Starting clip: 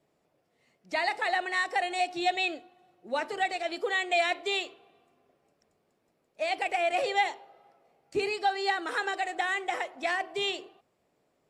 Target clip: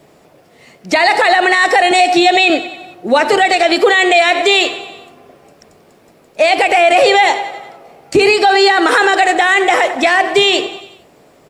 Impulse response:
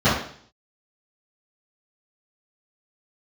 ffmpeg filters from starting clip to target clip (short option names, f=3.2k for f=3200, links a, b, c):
-filter_complex "[0:a]asettb=1/sr,asplit=3[a][b][c];[a]atrim=end=1.914[d];[b]atrim=start=1.91:end=2.5,asetpts=PTS-STARTPTS,afade=t=in:d=0.004:c=qsin,afade=t=out:st=0.586:d=0.004:c=qsin,highpass=f=150:w=0.5412,highpass=f=150:w=1.3066[e];[c]atrim=start=2.496[f];[d][e]acrossfade=d=0.004:c1=hsin:c2=qsin[g];[g][f]acrossfade=d=0.004:c1=qsin:c2=hsin,aecho=1:1:92|184|276|368|460:0.1|0.057|0.0325|0.0185|0.0106,alimiter=level_in=27dB:limit=-1dB:release=50:level=0:latency=1,volume=-1dB"